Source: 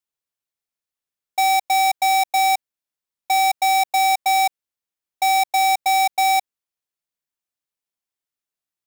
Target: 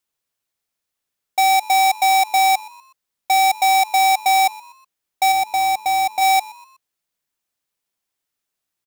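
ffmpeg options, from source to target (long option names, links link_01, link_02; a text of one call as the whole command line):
ffmpeg -i in.wav -filter_complex "[0:a]asettb=1/sr,asplit=3[link_01][link_02][link_03];[link_01]atrim=end=5.324[link_04];[link_02]atrim=start=5.32:end=6.21,asetpts=PTS-STARTPTS,afade=type=in:duration=0.004:curve=qsin,afade=type=out:start_time=0.886:duration=0.004:curve=qsin,lowshelf=frequency=480:gain=8[link_05];[link_03]atrim=start=6.206[link_06];[link_04][link_05]acrossfade=duration=0.004:curve1=hsin:curve2=qsin[link_07];[link_07][link_06]acrossfade=duration=0.004:curve1=qsin:curve2=hsin,alimiter=limit=-22dB:level=0:latency=1,asplit=4[link_08][link_09][link_10][link_11];[link_09]adelay=123,afreqshift=97,volume=-22dB[link_12];[link_10]adelay=246,afreqshift=194,volume=-29.3dB[link_13];[link_11]adelay=369,afreqshift=291,volume=-36.7dB[link_14];[link_08][link_12][link_13][link_14]amix=inputs=4:normalize=0,volume=8dB" out.wav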